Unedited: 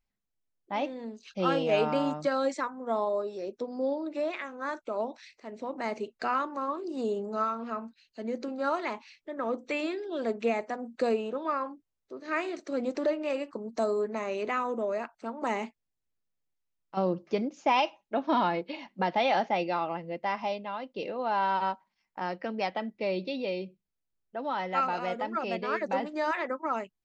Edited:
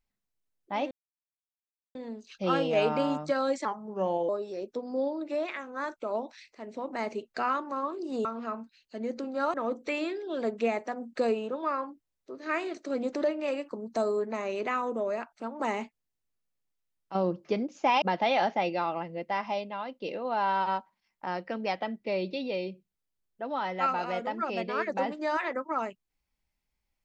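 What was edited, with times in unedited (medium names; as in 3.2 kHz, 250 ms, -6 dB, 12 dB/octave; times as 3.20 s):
0.91 s: insert silence 1.04 s
2.61–3.14 s: speed 83%
7.10–7.49 s: delete
8.78–9.36 s: delete
17.84–18.96 s: delete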